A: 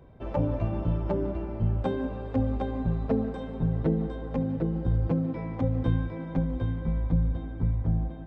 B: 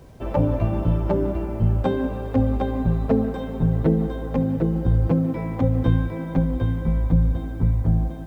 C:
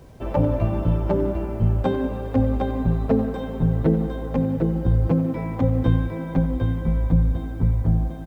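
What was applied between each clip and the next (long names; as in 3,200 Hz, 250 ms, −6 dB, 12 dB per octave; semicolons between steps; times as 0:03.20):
bit reduction 11 bits; level +6.5 dB
far-end echo of a speakerphone 90 ms, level −13 dB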